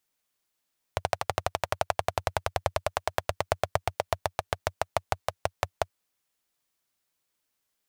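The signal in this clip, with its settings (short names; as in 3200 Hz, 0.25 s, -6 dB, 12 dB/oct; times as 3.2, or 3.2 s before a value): single-cylinder engine model, changing speed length 5.01 s, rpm 1500, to 600, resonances 92/650 Hz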